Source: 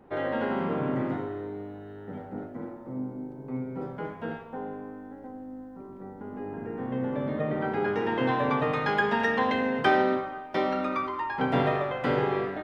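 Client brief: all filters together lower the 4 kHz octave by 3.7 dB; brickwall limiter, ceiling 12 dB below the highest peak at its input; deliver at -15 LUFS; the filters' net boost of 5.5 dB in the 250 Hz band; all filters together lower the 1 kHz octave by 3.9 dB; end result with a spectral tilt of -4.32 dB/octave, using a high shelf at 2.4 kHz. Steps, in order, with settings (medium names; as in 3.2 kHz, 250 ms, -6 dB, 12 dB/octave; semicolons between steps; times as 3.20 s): peaking EQ 250 Hz +6.5 dB; peaking EQ 1 kHz -6 dB; treble shelf 2.4 kHz +4 dB; peaking EQ 4 kHz -8.5 dB; trim +17.5 dB; peak limiter -5.5 dBFS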